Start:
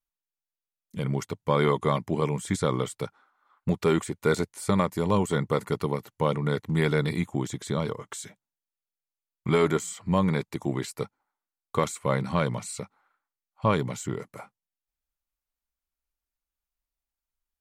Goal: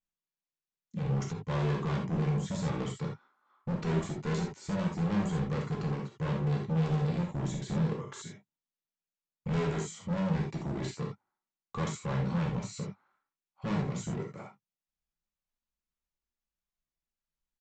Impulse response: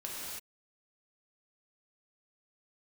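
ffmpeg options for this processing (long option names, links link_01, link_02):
-filter_complex "[0:a]equalizer=frequency=170:width=1.1:gain=10,aresample=16000,volume=24.5dB,asoftclip=hard,volume=-24.5dB,aresample=44100[link_01];[1:a]atrim=start_sample=2205,atrim=end_sample=3969[link_02];[link_01][link_02]afir=irnorm=-1:irlink=0,volume=-2.5dB"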